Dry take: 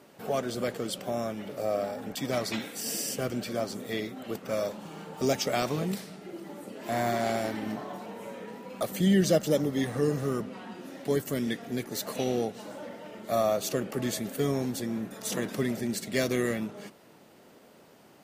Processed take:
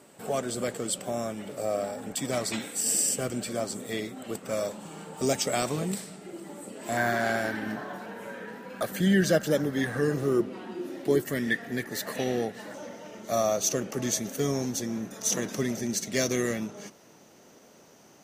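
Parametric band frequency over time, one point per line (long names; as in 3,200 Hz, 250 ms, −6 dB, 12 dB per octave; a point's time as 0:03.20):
parametric band +15 dB 0.28 octaves
8,000 Hz
from 0:06.97 1,600 Hz
from 0:10.14 350 Hz
from 0:11.25 1,800 Hz
from 0:12.74 6,100 Hz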